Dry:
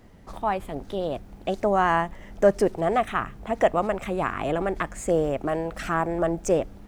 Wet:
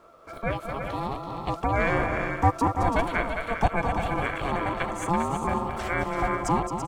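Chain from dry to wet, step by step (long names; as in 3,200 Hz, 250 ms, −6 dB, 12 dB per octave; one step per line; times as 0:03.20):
frequency inversion band by band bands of 1,000 Hz
ring modulation 340 Hz
multi-tap delay 218/334/400/547 ms −8/−7.5/−9/−18 dB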